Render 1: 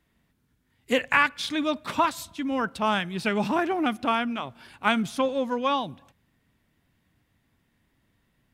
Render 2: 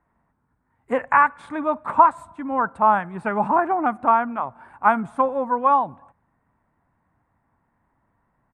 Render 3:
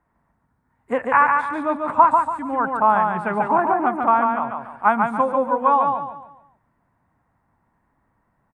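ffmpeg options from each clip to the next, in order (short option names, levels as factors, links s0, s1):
-af "firequalizer=gain_entry='entry(390,0);entry(890,13);entry(3100,-20);entry(5500,-26);entry(8600,-8);entry(13000,-30)':delay=0.05:min_phase=1,volume=0.891"
-af "aecho=1:1:143|286|429|572|715:0.631|0.227|0.0818|0.0294|0.0106"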